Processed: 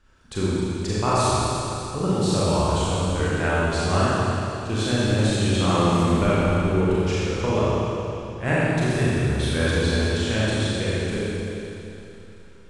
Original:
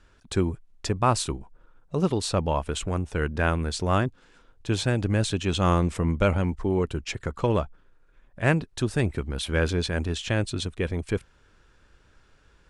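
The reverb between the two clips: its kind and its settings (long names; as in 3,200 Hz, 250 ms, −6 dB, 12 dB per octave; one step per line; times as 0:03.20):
four-comb reverb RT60 3.1 s, combs from 29 ms, DRR −9 dB
level −5 dB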